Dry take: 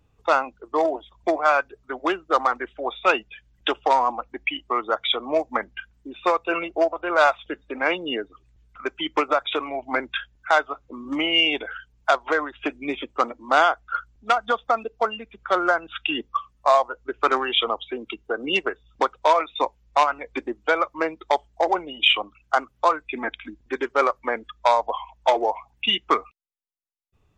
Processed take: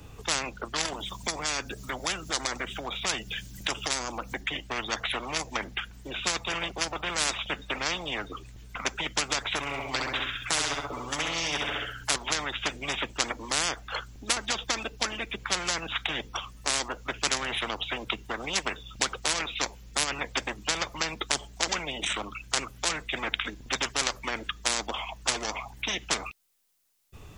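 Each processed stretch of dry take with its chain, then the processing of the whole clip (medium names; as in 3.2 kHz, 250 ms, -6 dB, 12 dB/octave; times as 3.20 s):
0.93–4.41 s: tone controls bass +14 dB, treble +13 dB + compression 2:1, threshold -42 dBFS
9.60–12.16 s: comb 6.9 ms, depth 64% + feedback delay 66 ms, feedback 34%, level -7 dB
whole clip: treble shelf 4 kHz +7.5 dB; spectrum-flattening compressor 10:1; trim -5 dB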